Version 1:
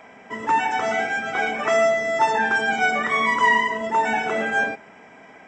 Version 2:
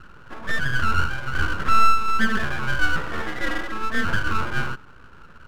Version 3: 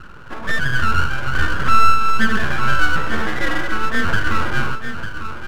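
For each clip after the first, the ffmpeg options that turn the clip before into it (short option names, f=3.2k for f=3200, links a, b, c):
-af "lowpass=f=720:t=q:w=4.9,aeval=exprs='abs(val(0))':c=same,volume=-4.5dB"
-filter_complex "[0:a]asplit=2[a][b];[b]acompressor=threshold=-24dB:ratio=6,volume=-2dB[c];[a][c]amix=inputs=2:normalize=0,aecho=1:1:284|899:0.188|0.335,volume=1.5dB"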